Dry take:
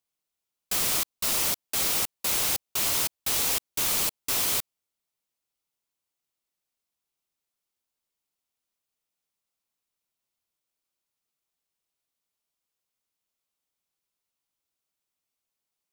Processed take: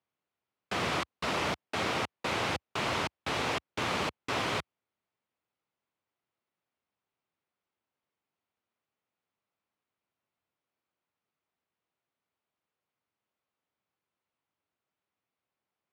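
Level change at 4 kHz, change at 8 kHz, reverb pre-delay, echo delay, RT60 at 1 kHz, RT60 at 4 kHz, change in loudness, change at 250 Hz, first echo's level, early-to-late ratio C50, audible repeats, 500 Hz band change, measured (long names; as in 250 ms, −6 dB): −6.0 dB, −18.5 dB, no reverb audible, no echo audible, no reverb audible, no reverb audible, −8.0 dB, +5.0 dB, no echo audible, no reverb audible, no echo audible, +5.0 dB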